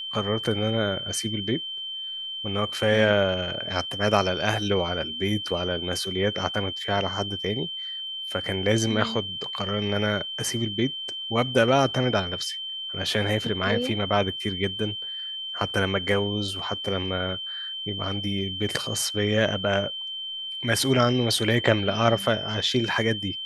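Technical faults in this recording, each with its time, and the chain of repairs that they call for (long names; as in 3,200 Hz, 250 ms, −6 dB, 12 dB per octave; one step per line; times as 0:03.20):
whistle 3,100 Hz −31 dBFS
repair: notch filter 3,100 Hz, Q 30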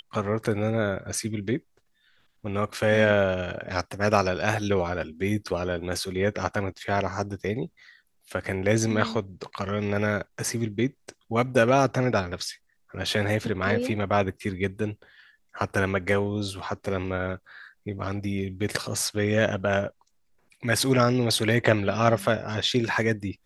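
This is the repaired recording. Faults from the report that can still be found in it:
none of them is left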